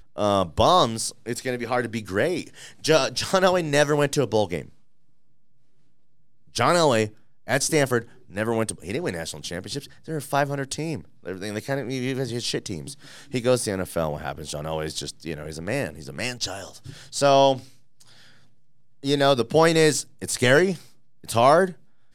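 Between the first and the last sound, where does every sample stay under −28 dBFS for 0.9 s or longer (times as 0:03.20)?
0:04.62–0:06.56
0:17.57–0:19.05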